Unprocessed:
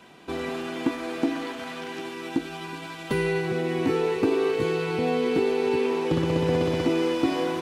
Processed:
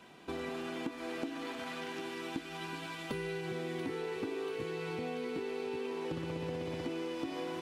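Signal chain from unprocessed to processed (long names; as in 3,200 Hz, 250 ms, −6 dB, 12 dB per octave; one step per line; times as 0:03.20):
downward compressor, threshold −30 dBFS, peak gain reduction 11.5 dB
on a send: delay with a high-pass on its return 686 ms, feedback 66%, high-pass 1,500 Hz, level −6 dB
on the sum: level −5.5 dB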